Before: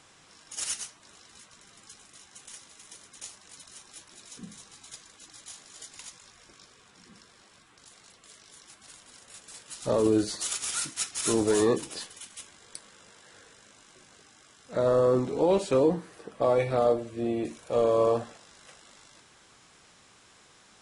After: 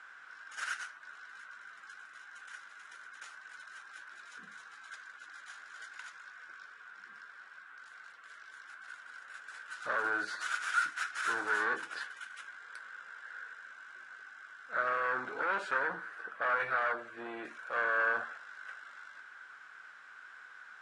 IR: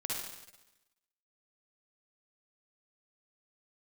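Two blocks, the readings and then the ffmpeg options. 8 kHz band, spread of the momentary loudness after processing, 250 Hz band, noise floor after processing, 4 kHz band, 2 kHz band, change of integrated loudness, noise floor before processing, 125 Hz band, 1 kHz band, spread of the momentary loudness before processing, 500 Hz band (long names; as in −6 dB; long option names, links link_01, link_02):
−17.5 dB, 19 LU, −21.5 dB, −54 dBFS, −9.5 dB, +12.5 dB, −8.5 dB, −58 dBFS, below −25 dB, 0.0 dB, 22 LU, −17.0 dB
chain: -af "aeval=exprs='0.237*(cos(1*acos(clip(val(0)/0.237,-1,1)))-cos(1*PI/2))+0.0473*(cos(2*acos(clip(val(0)/0.237,-1,1)))-cos(2*PI/2))+0.075*(cos(4*acos(clip(val(0)/0.237,-1,1)))-cos(4*PI/2))+0.0133*(cos(6*acos(clip(val(0)/0.237,-1,1)))-cos(6*PI/2))':channel_layout=same,apsyclip=25.5dB,bandpass=frequency=1500:width_type=q:width=9.6:csg=0,volume=-7.5dB"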